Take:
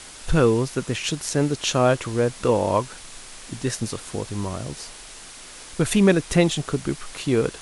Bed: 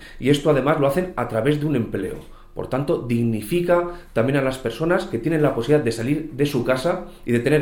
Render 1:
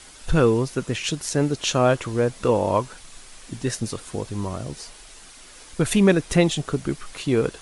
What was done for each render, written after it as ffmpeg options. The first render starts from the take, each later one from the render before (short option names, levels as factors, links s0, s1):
-af "afftdn=nr=6:nf=-42"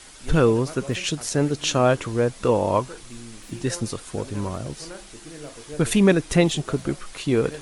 -filter_complex "[1:a]volume=0.0891[s0];[0:a][s0]amix=inputs=2:normalize=0"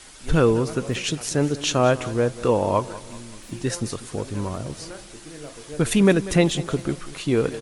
-af "aecho=1:1:192|384|576|768:0.141|0.0622|0.0273|0.012"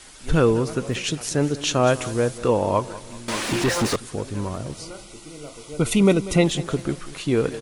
-filter_complex "[0:a]asettb=1/sr,asplit=3[s0][s1][s2];[s0]atrim=end=1.874[s3];[s1]atrim=start=1.87:end=2.38,asetpts=PTS-STARTPTS,afade=t=in:d=0.004:c=qsin,afade=t=out:st=0.506:d=0.004:c=qsin,aemphasis=mode=production:type=cd[s4];[s2]atrim=start=2.376[s5];[s3][s4]acrossfade=d=0.004:c1=hsin:c2=qsin[s6];[s6][s5]acrossfade=d=0.004:c1=qsin:c2=hsin,asettb=1/sr,asplit=3[s7][s8][s9];[s7]atrim=end=3.284[s10];[s8]atrim=start=3.28:end=3.96,asetpts=PTS-STARTPTS,afade=t=in:d=0.004:c=qsin,afade=t=out:st=0.676:d=0.004:c=qsin,asplit=2[s11][s12];[s12]highpass=f=720:p=1,volume=50.1,asoftclip=type=tanh:threshold=0.237[s13];[s11][s13]amix=inputs=2:normalize=0,lowpass=f=2400:p=1,volume=0.501[s14];[s9]atrim=start=3.956[s15];[s10][s14]acrossfade=d=0.004:c1=hsin:c2=qsin[s16];[s16][s15]acrossfade=d=0.004:c1=qsin:c2=hsin,asettb=1/sr,asplit=3[s17][s18][s19];[s17]atrim=end=4.744[s20];[s18]atrim=start=4.74:end=6.44,asetpts=PTS-STARTPTS,afade=t=in:d=0.004:c=qsin,afade=t=out:st=1.696:d=0.004:c=qsin,asuperstop=centerf=1700:order=20:qfactor=4.5[s21];[s19]atrim=start=6.436[s22];[s20][s21]acrossfade=d=0.004:c1=hsin:c2=qsin[s23];[s23][s22]acrossfade=d=0.004:c1=qsin:c2=hsin"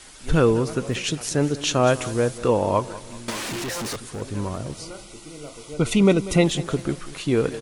-filter_complex "[0:a]asettb=1/sr,asplit=3[s0][s1][s2];[s0]atrim=end=3.304[s3];[s1]atrim=start=3.3:end=4.22,asetpts=PTS-STARTPTS,afade=t=in:d=0.004:c=qsin,afade=t=out:st=0.916:d=0.004:c=qsin,asoftclip=type=hard:threshold=0.0398[s4];[s2]atrim=start=4.216[s5];[s3][s4]acrossfade=d=0.004:c1=hsin:c2=qsin[s6];[s6][s5]acrossfade=d=0.004:c1=qsin:c2=hsin,asettb=1/sr,asplit=3[s7][s8][s9];[s7]atrim=end=5.744[s10];[s8]atrim=start=5.74:end=6.18,asetpts=PTS-STARTPTS,afade=t=in:d=0.004:c=qsin,afade=t=out:st=0.436:d=0.004:c=qsin,lowpass=8100[s11];[s9]atrim=start=6.176[s12];[s10][s11]acrossfade=d=0.004:c1=hsin:c2=qsin[s13];[s13][s12]acrossfade=d=0.004:c1=qsin:c2=hsin"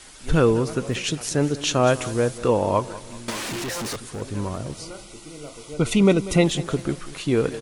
-af anull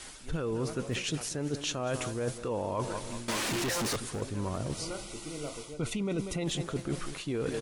-af "alimiter=limit=0.211:level=0:latency=1:release=11,areverse,acompressor=threshold=0.0316:ratio=6,areverse"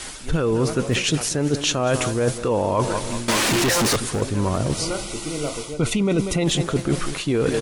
-af "volume=3.98"